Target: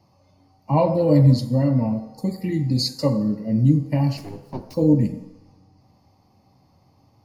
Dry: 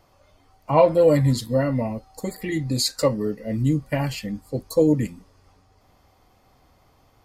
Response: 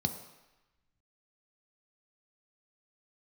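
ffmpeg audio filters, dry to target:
-filter_complex "[0:a]asettb=1/sr,asplit=3[a][b][c];[a]atrim=end=4.174[d];[b]atrim=start=4.17:end=4.74,asetpts=PTS-STARTPTS,afade=t=in:d=0.004:c=qsin,afade=t=out:st=0.566:d=0.004:c=qsin,aeval=exprs='abs(val(0))':c=same[e];[c]atrim=start=4.736[f];[d][e]acrossfade=d=0.004:c1=hsin:c2=qsin[g];[g][f]acrossfade=d=0.004:c1=qsin:c2=hsin[h];[1:a]atrim=start_sample=2205,asetrate=48510,aresample=44100[i];[h][i]afir=irnorm=-1:irlink=0,volume=-8.5dB"

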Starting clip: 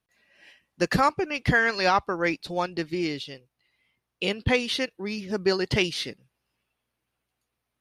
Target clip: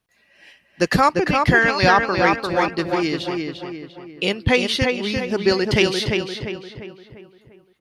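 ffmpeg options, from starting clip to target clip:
-filter_complex "[0:a]asplit=2[a][b];[b]adelay=347,lowpass=f=3k:p=1,volume=-3.5dB,asplit=2[c][d];[d]adelay=347,lowpass=f=3k:p=1,volume=0.47,asplit=2[e][f];[f]adelay=347,lowpass=f=3k:p=1,volume=0.47,asplit=2[g][h];[h]adelay=347,lowpass=f=3k:p=1,volume=0.47,asplit=2[i][j];[j]adelay=347,lowpass=f=3k:p=1,volume=0.47,asplit=2[k][l];[l]adelay=347,lowpass=f=3k:p=1,volume=0.47[m];[a][c][e][g][i][k][m]amix=inputs=7:normalize=0,volume=5.5dB"

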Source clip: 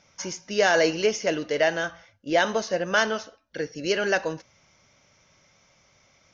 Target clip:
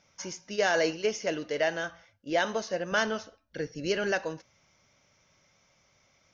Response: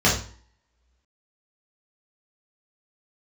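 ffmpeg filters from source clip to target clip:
-filter_complex "[0:a]asplit=3[a][b][c];[a]afade=t=out:st=0.55:d=0.02[d];[b]agate=range=-33dB:threshold=-23dB:ratio=3:detection=peak,afade=t=in:st=0.55:d=0.02,afade=t=out:st=1.14:d=0.02[e];[c]afade=t=in:st=1.14:d=0.02[f];[d][e][f]amix=inputs=3:normalize=0,asettb=1/sr,asplit=3[g][h][i];[g]atrim=end=2.924[j];[h]atrim=start=2.92:end=4.12,asetpts=PTS-STARTPTS,afade=t=in:d=0.004:c=qsin,afade=t=out:st=1.196:d=0.004:c=qsin,lowshelf=f=160:g=11[k];[i]atrim=start=4.116[l];[j][k]acrossfade=d=0.004:c1=hsin:c2=qsin[m];[m][l]acrossfade=d=0.004:c1=qsin:c2=hsin,volume=-5.5dB"

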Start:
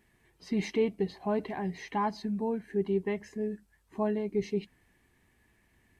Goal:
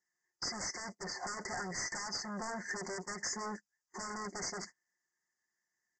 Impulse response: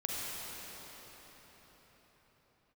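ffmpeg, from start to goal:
-af "aeval=exprs='(tanh(100*val(0)+0.5)-tanh(0.5))/100':c=same,aderivative,aecho=1:1:5.6:0.45,acompressor=threshold=-57dB:ratio=12,aresample=16000,aeval=exprs='0.00447*sin(PI/2*3.98*val(0)/0.00447)':c=same,aresample=44100,agate=range=-32dB:threshold=-56dB:ratio=16:detection=peak,asuperstop=centerf=3100:order=20:qfactor=1.2,volume=14.5dB"

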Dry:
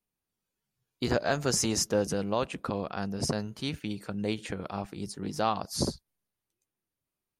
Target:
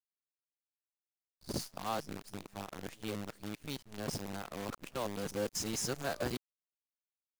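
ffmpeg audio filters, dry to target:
-af "areverse,acrusher=bits=6:dc=4:mix=0:aa=0.000001,volume=-9dB"

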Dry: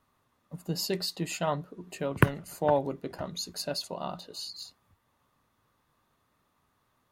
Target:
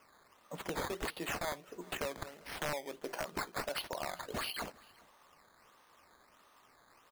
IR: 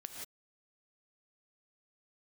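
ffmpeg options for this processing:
-af "highpass=470,acompressor=threshold=-46dB:ratio=6,acrusher=samples=11:mix=1:aa=0.000001:lfo=1:lforange=11:lforate=1.5,aeval=exprs='(mod(79.4*val(0)+1,2)-1)/79.4':c=same,aecho=1:1:396:0.0631,volume=10dB"

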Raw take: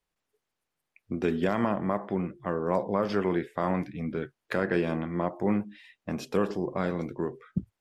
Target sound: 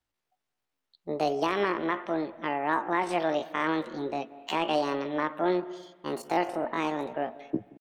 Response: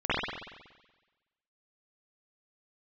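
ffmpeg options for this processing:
-filter_complex "[0:a]highshelf=f=2.8k:g=-4,asetrate=76340,aresample=44100,atempo=0.577676,asplit=2[a][b];[1:a]atrim=start_sample=2205,adelay=128[c];[b][c]afir=irnorm=-1:irlink=0,volume=-31.5dB[d];[a][d]amix=inputs=2:normalize=0"

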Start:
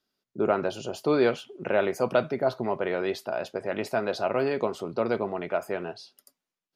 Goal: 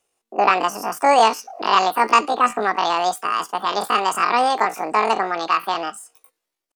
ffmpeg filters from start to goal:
-af "asetrate=83250,aresample=44100,atempo=0.529732,volume=8.5dB"

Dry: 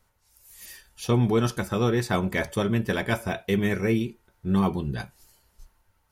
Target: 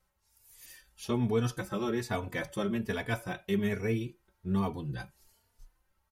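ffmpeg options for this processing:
-filter_complex "[0:a]asplit=2[a][b];[b]adelay=3.4,afreqshift=1.2[c];[a][c]amix=inputs=2:normalize=1,volume=-4.5dB"

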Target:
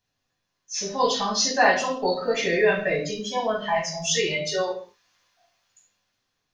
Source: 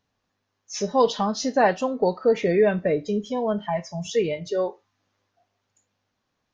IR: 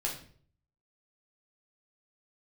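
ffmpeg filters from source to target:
-filter_complex "[0:a]highshelf=f=2.2k:g=9,bandreject=f=860:w=13,acrossover=split=780[a][b];[b]dynaudnorm=f=260:g=9:m=10.5dB[c];[a][c]amix=inputs=2:normalize=0[d];[1:a]atrim=start_sample=2205,afade=t=out:st=0.29:d=0.01,atrim=end_sample=13230[e];[d][e]afir=irnorm=-1:irlink=0,volume=-8.5dB"

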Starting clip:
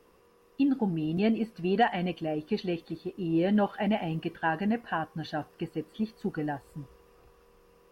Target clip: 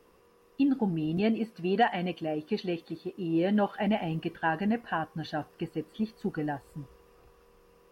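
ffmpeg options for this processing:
-filter_complex "[0:a]asettb=1/sr,asplit=3[a][b][c];[a]atrim=end=1.204[d];[b]atrim=start=1.2:end=3.76,asetpts=PTS-STARTPTS,afade=t=in:d=0.004:c=qsin,afade=t=out:st=2.556:d=0.004:c=qsin,highpass=f=130:p=1[e];[c]atrim=start=3.756[f];[d][e]acrossfade=d=0.004:c1=hsin:c2=qsin[g];[g][f]acrossfade=d=0.004:c1=qsin:c2=hsin"

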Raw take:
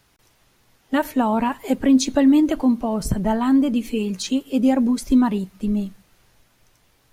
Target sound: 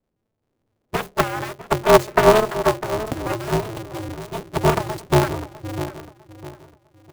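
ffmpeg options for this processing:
-filter_complex "[0:a]aeval=exprs='val(0)+0.5*0.0473*sgn(val(0))':c=same,agate=range=-33dB:threshold=-17dB:ratio=3:detection=peak,aeval=exprs='0.501*(cos(1*acos(clip(val(0)/0.501,-1,1)))-cos(1*PI/2))+0.0178*(cos(2*acos(clip(val(0)/0.501,-1,1)))-cos(2*PI/2))+0.2*(cos(3*acos(clip(val(0)/0.501,-1,1)))-cos(3*PI/2))':c=same,asplit=3[a][b][c];[a]afade=t=out:st=1.12:d=0.02[d];[b]afreqshift=240,afade=t=in:st=1.12:d=0.02,afade=t=out:st=2.8:d=0.02[e];[c]afade=t=in:st=2.8:d=0.02[f];[d][e][f]amix=inputs=3:normalize=0,asettb=1/sr,asplit=3[g][h][i];[g]atrim=end=3.324[j];[h]atrim=start=3.32:end=4.09,asetpts=PTS-STARTPTS,afade=t=in:d=0.004:c=qsin,afade=t=out:st=0.766:d=0.004:c=qsin,acrossover=split=140[k][l];[l]acompressor=threshold=-38dB:ratio=2[m];[k][m]amix=inputs=2:normalize=0[n];[i]atrim=start=4.086[o];[j][n]acrossfade=d=0.004:c1=hsin:c2=qsin[p];[p][o]acrossfade=d=0.004:c1=qsin:c2=hsin,acrossover=split=590[q][r];[q]asoftclip=type=tanh:threshold=-23.5dB[s];[r]acrusher=bits=6:mix=0:aa=0.000001[t];[s][t]amix=inputs=2:normalize=0,equalizer=f=350:w=0.39:g=8,asplit=2[u][v];[v]adelay=652,lowpass=f=1.5k:p=1,volume=-13dB,asplit=2[w][x];[x]adelay=652,lowpass=f=1.5k:p=1,volume=0.35,asplit=2[y][z];[z]adelay=652,lowpass=f=1.5k:p=1,volume=0.35[aa];[w][y][aa]amix=inputs=3:normalize=0[ab];[u][ab]amix=inputs=2:normalize=0,dynaudnorm=f=170:g=7:m=5dB,aeval=exprs='val(0)*sgn(sin(2*PI*110*n/s))':c=same"

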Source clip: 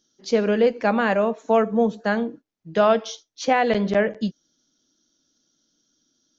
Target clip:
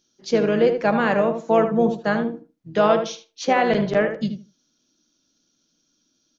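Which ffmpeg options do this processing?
-filter_complex "[0:a]asplit=2[a][b];[b]asetrate=33038,aresample=44100,atempo=1.33484,volume=-11dB[c];[a][c]amix=inputs=2:normalize=0,asplit=2[d][e];[e]adelay=77,lowpass=f=1.8k:p=1,volume=-6.5dB,asplit=2[f][g];[g]adelay=77,lowpass=f=1.8k:p=1,volume=0.19,asplit=2[h][i];[i]adelay=77,lowpass=f=1.8k:p=1,volume=0.19[j];[d][f][h][j]amix=inputs=4:normalize=0"

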